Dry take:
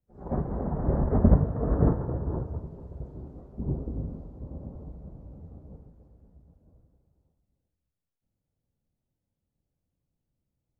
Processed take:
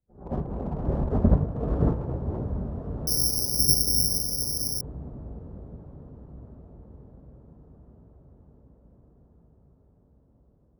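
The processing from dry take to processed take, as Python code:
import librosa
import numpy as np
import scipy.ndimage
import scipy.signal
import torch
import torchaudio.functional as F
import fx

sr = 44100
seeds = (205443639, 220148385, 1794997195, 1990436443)

y = fx.wiener(x, sr, points=15)
y = fx.echo_diffused(y, sr, ms=1318, feedback_pct=52, wet_db=-9.5)
y = fx.resample_bad(y, sr, factor=8, down='none', up='zero_stuff', at=(3.07, 4.81))
y = F.gain(torch.from_numpy(y), -1.0).numpy()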